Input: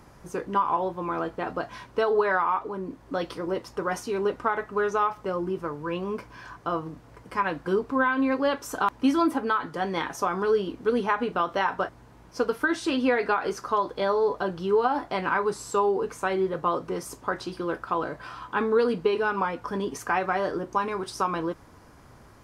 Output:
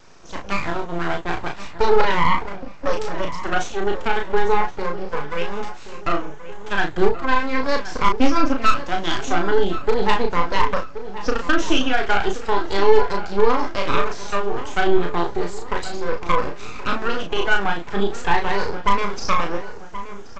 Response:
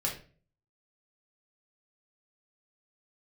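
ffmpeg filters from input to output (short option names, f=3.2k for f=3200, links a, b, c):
-filter_complex "[0:a]afftfilt=real='re*pow(10,17/40*sin(2*PI*(0.92*log(max(b,1)*sr/1024/100)/log(2)-(0.33)*(pts-256)/sr)))':imag='im*pow(10,17/40*sin(2*PI*(0.92*log(max(b,1)*sr/1024/100)/log(2)-(0.33)*(pts-256)/sr)))':win_size=1024:overlap=0.75,highshelf=f=2.9k:g=6,aeval=exprs='0.562*(cos(1*acos(clip(val(0)/0.562,-1,1)))-cos(1*PI/2))+0.00447*(cos(4*acos(clip(val(0)/0.562,-1,1)))-cos(4*PI/2))+0.0398*(cos(8*acos(clip(val(0)/0.562,-1,1)))-cos(8*PI/2))':c=same,atempo=1.1,asubboost=boost=3.5:cutoff=56,aresample=16000,aeval=exprs='abs(val(0))':c=same,aresample=44100,asplit=2[a][b];[b]adelay=35,volume=-4dB[c];[a][c]amix=inputs=2:normalize=0,asplit=2[d][e];[e]adelay=1076,lowpass=f=2.4k:p=1,volume=-13dB,asplit=2[f][g];[g]adelay=1076,lowpass=f=2.4k:p=1,volume=0.44,asplit=2[h][i];[i]adelay=1076,lowpass=f=2.4k:p=1,volume=0.44,asplit=2[j][k];[k]adelay=1076,lowpass=f=2.4k:p=1,volume=0.44[l];[f][h][j][l]amix=inputs=4:normalize=0[m];[d][m]amix=inputs=2:normalize=0"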